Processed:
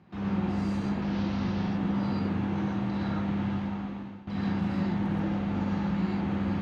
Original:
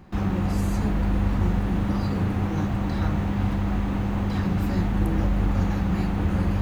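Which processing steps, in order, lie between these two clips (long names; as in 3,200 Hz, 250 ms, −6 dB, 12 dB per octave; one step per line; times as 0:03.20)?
0:01.02–0:01.64: linear delta modulator 32 kbit/s, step −32 dBFS
Chebyshev band-pass filter 130–4,000 Hz, order 2
0:03.43–0:04.27: fade out linear
reverb whose tail is shaped and stops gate 150 ms rising, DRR −3.5 dB
level −8.5 dB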